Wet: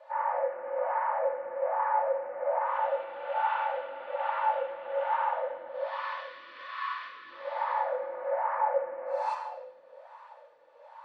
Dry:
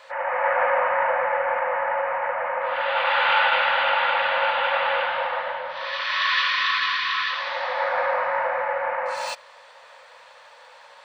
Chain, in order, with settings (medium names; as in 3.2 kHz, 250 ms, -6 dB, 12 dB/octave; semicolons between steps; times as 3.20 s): peak limiter -18.5 dBFS, peak gain reduction 10 dB; treble shelf 5 kHz +9.5 dB; simulated room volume 2900 m³, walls mixed, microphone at 2.5 m; wah-wah 1.2 Hz 340–1000 Hz, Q 4.3